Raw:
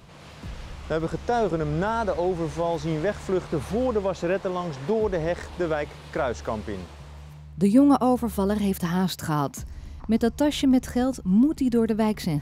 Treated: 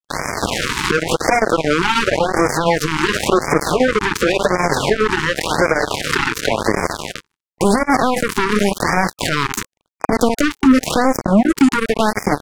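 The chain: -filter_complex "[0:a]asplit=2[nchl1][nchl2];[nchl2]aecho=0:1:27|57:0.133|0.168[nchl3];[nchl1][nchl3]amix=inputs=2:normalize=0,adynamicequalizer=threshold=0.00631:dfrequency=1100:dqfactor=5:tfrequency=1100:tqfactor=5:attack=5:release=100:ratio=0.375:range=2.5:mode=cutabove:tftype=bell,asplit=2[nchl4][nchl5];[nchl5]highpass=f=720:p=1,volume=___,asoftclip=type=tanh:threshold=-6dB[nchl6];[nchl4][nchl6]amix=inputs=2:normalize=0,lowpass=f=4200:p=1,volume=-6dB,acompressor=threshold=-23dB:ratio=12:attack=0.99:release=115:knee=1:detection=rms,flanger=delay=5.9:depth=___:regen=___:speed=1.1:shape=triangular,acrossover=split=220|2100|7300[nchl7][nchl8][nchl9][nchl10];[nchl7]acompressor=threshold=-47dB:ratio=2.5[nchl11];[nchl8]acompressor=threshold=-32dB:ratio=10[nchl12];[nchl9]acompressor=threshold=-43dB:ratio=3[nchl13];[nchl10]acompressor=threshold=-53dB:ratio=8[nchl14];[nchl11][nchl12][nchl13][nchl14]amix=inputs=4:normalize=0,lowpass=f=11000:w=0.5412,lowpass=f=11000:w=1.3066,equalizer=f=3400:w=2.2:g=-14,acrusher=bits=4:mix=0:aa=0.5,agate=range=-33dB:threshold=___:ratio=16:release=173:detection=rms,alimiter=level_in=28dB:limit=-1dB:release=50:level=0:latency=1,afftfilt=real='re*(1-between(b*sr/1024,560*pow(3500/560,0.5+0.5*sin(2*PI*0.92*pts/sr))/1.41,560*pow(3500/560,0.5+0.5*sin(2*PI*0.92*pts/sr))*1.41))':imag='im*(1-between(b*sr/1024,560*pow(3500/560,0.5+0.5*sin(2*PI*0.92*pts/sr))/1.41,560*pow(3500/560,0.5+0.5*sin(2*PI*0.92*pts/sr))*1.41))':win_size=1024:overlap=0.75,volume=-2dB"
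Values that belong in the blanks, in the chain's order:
23dB, 4, 3, -45dB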